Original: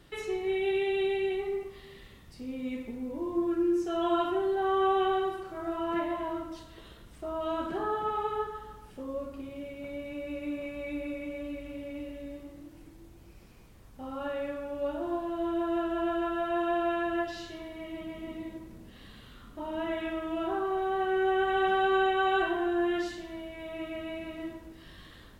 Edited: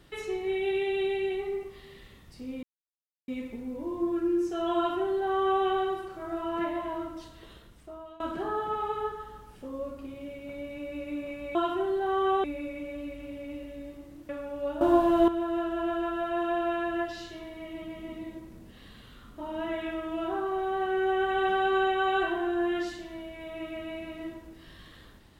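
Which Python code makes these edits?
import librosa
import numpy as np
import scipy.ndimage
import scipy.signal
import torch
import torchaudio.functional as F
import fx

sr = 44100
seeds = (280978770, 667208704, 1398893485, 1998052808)

y = fx.edit(x, sr, fx.insert_silence(at_s=2.63, length_s=0.65),
    fx.duplicate(start_s=4.11, length_s=0.89, to_s=10.9),
    fx.fade_out_to(start_s=6.86, length_s=0.69, floor_db=-23.0),
    fx.cut(start_s=12.75, length_s=1.73),
    fx.clip_gain(start_s=15.0, length_s=0.47, db=11.0), tone=tone)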